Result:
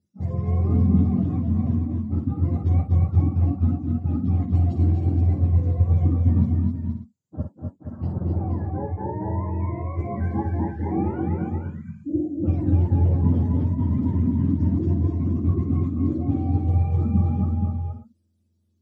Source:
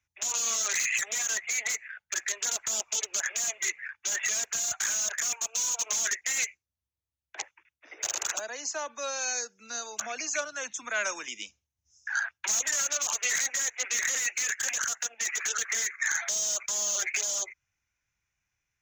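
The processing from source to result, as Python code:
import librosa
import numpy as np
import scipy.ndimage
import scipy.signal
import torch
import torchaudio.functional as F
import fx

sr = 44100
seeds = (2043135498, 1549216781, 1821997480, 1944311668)

p1 = fx.octave_mirror(x, sr, pivot_hz=700.0)
p2 = fx.lowpass(p1, sr, hz=1100.0, slope=6, at=(8.12, 9.14))
p3 = p2 + fx.echo_multitap(p2, sr, ms=(52, 244, 265, 473, 533, 589), db=(-8.0, -5.5, -6.0, -6.5, -14.0, -17.5), dry=0)
y = p3 * librosa.db_to_amplitude(4.0)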